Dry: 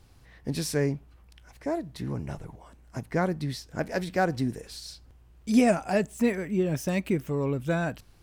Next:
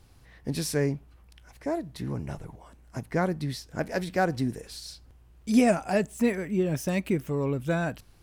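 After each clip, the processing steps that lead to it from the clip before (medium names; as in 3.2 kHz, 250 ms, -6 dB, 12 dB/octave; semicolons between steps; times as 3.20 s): peaking EQ 11 kHz +3 dB 0.37 oct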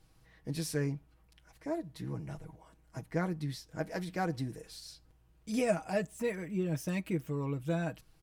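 comb 6.3 ms, depth 60%; trim -8.5 dB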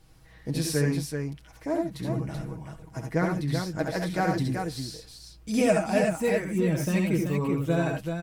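multi-tap echo 68/83/382 ms -5.5/-6/-5.5 dB; trim +6.5 dB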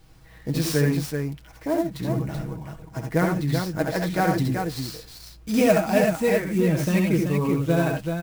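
sampling jitter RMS 0.021 ms; trim +4 dB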